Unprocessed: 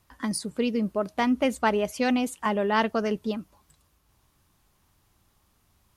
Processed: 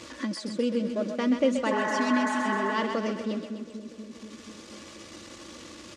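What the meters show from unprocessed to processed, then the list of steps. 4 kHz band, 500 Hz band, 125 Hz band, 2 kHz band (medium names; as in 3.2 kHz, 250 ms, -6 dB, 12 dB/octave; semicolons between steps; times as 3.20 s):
-1.0 dB, -1.5 dB, no reading, +0.5 dB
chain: jump at every zero crossing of -33 dBFS; cabinet simulation 160–7200 Hz, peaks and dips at 330 Hz +6 dB, 490 Hz +7 dB, 830 Hz -10 dB, 1.4 kHz -3 dB; in parallel at -1 dB: compression, threshold -35 dBFS, peak gain reduction 18 dB; on the sum: spectral replace 1.73–2.70 s, 490–2200 Hz after; expander -25 dBFS; on a send: two-band feedback delay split 490 Hz, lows 241 ms, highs 129 ms, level -6.5 dB; on the sum: upward compressor, threshold -25 dBFS; comb 3.5 ms, depth 56%; trim -7 dB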